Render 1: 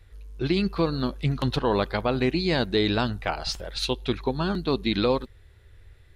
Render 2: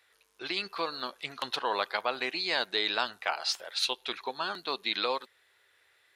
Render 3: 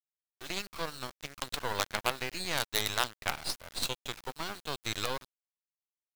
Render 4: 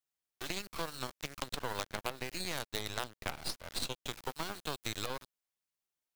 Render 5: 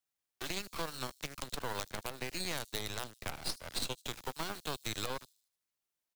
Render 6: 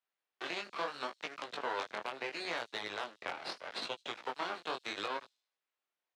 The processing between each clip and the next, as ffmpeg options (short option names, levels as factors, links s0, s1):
-af "highpass=830"
-af "acrusher=bits=4:dc=4:mix=0:aa=0.000001,aeval=exprs='sgn(val(0))*max(abs(val(0))-0.00562,0)':c=same"
-filter_complex "[0:a]acrossover=split=670|6800[s0][s1][s2];[s0]acompressor=threshold=0.00631:ratio=4[s3];[s1]acompressor=threshold=0.00562:ratio=4[s4];[s2]acompressor=threshold=0.00224:ratio=4[s5];[s3][s4][s5]amix=inputs=3:normalize=0,asplit=2[s6][s7];[s7]acrusher=bits=3:dc=4:mix=0:aa=0.000001,volume=0.282[s8];[s6][s8]amix=inputs=2:normalize=0,volume=1.58"
-filter_complex "[0:a]acrossover=split=120|4900[s0][s1][s2];[s1]alimiter=level_in=1.5:limit=0.0631:level=0:latency=1:release=37,volume=0.668[s3];[s2]aecho=1:1:77|154|231|308|385:0.158|0.0856|0.0462|0.025|0.0135[s4];[s0][s3][s4]amix=inputs=3:normalize=0,volume=1.12"
-af "highpass=410,lowpass=2900,flanger=delay=17:depth=6.7:speed=0.75,volume=2.24"